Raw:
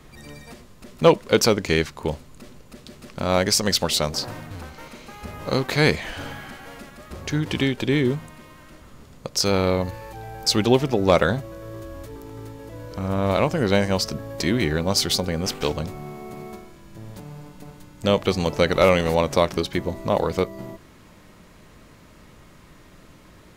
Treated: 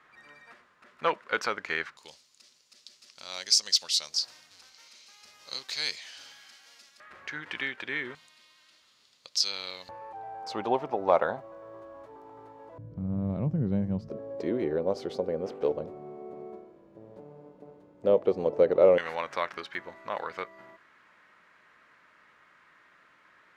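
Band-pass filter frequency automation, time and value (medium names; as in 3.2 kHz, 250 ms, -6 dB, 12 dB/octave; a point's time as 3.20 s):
band-pass filter, Q 2.2
1.5 kHz
from 1.97 s 5.1 kHz
from 7.00 s 1.7 kHz
from 8.15 s 4.2 kHz
from 9.89 s 830 Hz
from 12.78 s 150 Hz
from 14.10 s 480 Hz
from 18.98 s 1.6 kHz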